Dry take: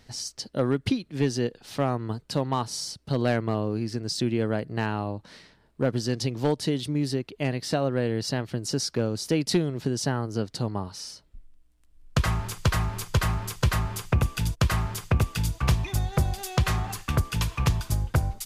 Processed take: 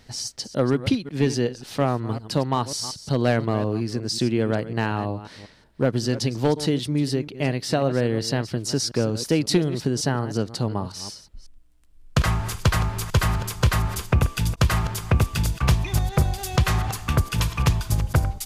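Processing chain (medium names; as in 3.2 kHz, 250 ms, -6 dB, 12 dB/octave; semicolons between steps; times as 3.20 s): chunks repeated in reverse 182 ms, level -13.5 dB; trim +3.5 dB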